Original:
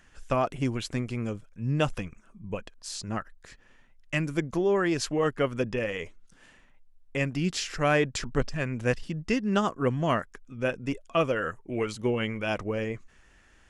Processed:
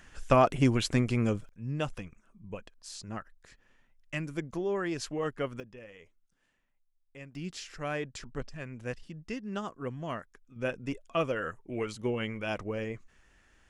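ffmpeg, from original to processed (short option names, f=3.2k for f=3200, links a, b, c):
-af "asetnsamples=n=441:p=0,asendcmd='1.49 volume volume -7dB;5.6 volume volume -19dB;7.35 volume volume -11dB;10.56 volume volume -4.5dB',volume=4dB"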